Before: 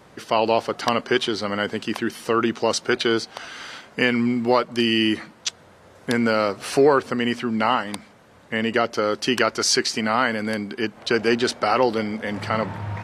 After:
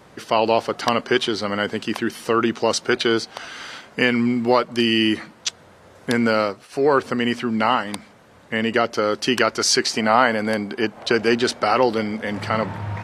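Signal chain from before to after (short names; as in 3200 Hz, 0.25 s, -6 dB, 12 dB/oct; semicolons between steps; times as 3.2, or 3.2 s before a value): 6.4–6.96 dip -24 dB, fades 0.28 s; 9.83–11.12 bell 730 Hz +6 dB 1.3 oct; gain +1.5 dB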